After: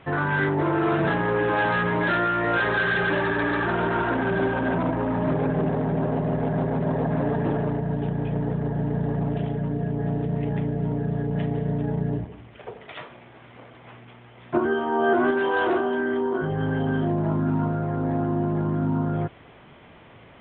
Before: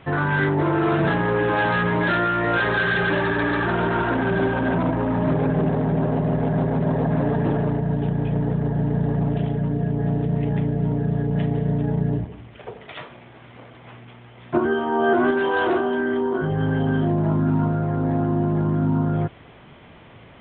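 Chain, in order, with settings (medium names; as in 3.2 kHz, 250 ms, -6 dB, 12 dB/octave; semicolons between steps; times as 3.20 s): tone controls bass -3 dB, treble -5 dB; trim -1.5 dB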